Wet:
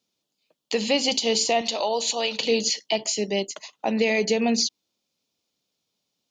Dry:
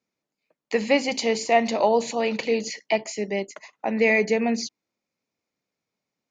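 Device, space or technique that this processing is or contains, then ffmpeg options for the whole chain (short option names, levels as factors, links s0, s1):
over-bright horn tweeter: -filter_complex "[0:a]highshelf=f=2600:t=q:w=3:g=6.5,alimiter=limit=0.224:level=0:latency=1:release=113,asettb=1/sr,asplit=3[s0][s1][s2];[s0]atrim=end=1.614[s3];[s1]atrim=start=1.61:end=2.4,asetpts=PTS-STARTPTS,afade=t=in:d=0.004:c=qsin,afade=t=out:st=0.786:d=0.004:c=qsin,equalizer=f=150:w=0.46:g=-12.5[s4];[s2]atrim=start=2.396[s5];[s3][s4]acrossfade=d=0.004:c1=hsin:c2=qsin[s6];[s6][s5]acrossfade=d=0.004:c1=qsin:c2=hsin,volume=1.19"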